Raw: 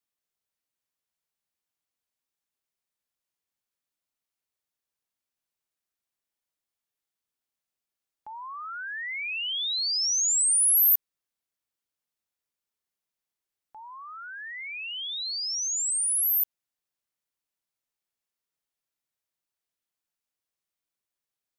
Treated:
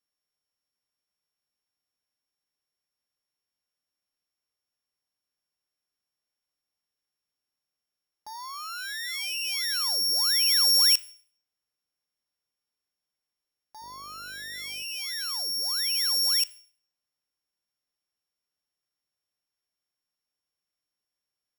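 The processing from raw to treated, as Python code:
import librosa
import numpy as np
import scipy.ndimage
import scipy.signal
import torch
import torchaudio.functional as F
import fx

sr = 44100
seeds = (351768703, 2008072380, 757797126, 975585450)

y = np.r_[np.sort(x[:len(x) // 8 * 8].reshape(-1, 8), axis=1).ravel(), x[len(x) // 8 * 8:]]
y = fx.rev_schroeder(y, sr, rt60_s=0.5, comb_ms=27, drr_db=18.5)
y = fx.dmg_buzz(y, sr, base_hz=50.0, harmonics=13, level_db=-58.0, tilt_db=-2, odd_only=False, at=(13.81, 14.82), fade=0.02)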